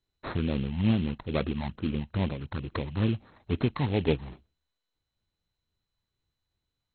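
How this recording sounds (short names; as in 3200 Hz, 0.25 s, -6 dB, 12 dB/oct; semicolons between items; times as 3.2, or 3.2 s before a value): tremolo triangle 3.7 Hz, depth 35%; phasing stages 8, 2.3 Hz, lowest notch 410–2800 Hz; aliases and images of a low sample rate 2900 Hz, jitter 20%; MP2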